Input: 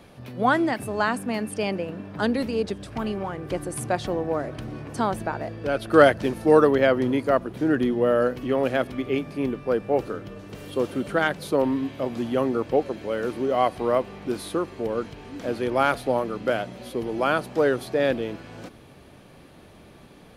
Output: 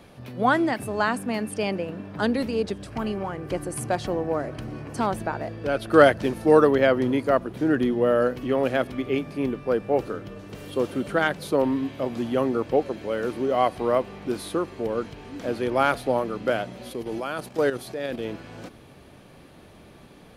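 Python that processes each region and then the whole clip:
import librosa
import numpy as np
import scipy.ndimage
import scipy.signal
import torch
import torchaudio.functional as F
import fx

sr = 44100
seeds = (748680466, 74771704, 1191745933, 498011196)

y = fx.chain(x, sr, fx.notch(hz=3600.0, q=11.0),
    fx.clip_hard(threshold_db=-13.5), at=(2.83, 5.07))
y = fx.chain(y, sr, fx.high_shelf(hz=4200.0, db=7.0),
    fx.level_steps(step_db=10), at=(16.91, 18.25))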